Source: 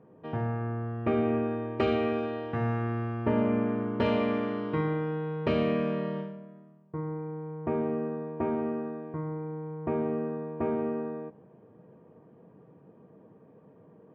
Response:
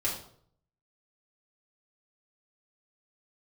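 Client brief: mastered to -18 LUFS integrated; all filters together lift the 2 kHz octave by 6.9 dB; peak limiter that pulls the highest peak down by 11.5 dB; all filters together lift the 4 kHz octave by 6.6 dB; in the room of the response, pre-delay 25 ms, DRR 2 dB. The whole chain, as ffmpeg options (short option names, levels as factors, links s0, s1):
-filter_complex "[0:a]equalizer=f=2000:t=o:g=7,equalizer=f=4000:t=o:g=6,alimiter=level_in=1.06:limit=0.0631:level=0:latency=1,volume=0.944,asplit=2[s0][s1];[1:a]atrim=start_sample=2205,adelay=25[s2];[s1][s2]afir=irnorm=-1:irlink=0,volume=0.376[s3];[s0][s3]amix=inputs=2:normalize=0,volume=4.73"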